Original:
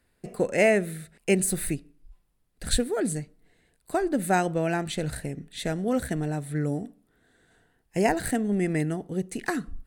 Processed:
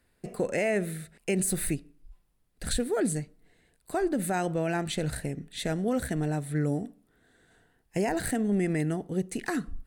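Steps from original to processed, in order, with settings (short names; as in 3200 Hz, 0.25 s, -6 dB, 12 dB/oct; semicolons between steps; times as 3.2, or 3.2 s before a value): limiter -18.5 dBFS, peak gain reduction 9.5 dB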